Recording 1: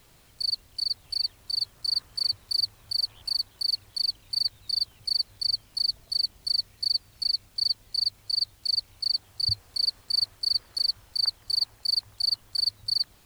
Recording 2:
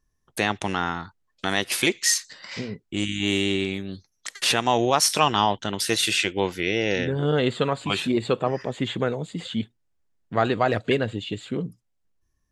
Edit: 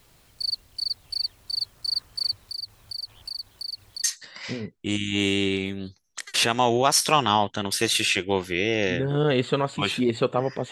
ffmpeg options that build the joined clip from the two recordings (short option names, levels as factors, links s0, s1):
-filter_complex "[0:a]asettb=1/sr,asplit=3[s0][s1][s2];[s0]atrim=end=2.434[s3];[s1]atrim=start=2.43:end=4.04,asetpts=PTS-STARTPTS,afade=t=in:d=0.004:c=qsin,afade=t=out:st=1.606:d=0.004:c=qsin,acompressor=threshold=0.0282:ratio=4:attack=3.2:release=140:knee=1:detection=peak[s4];[s2]atrim=start=4.036[s5];[s3][s4]acrossfade=d=0.004:c1=hsin:c2=qsin[s6];[s6][s5]acrossfade=d=0.004:c1=qsin:c2=hsin,apad=whole_dur=10.71,atrim=end=10.71,atrim=end=4.042[s7];[1:a]atrim=start=2.118:end=8.79[s8];[s7][s8]acrossfade=d=0.004:c1=hsin:c2=hsin"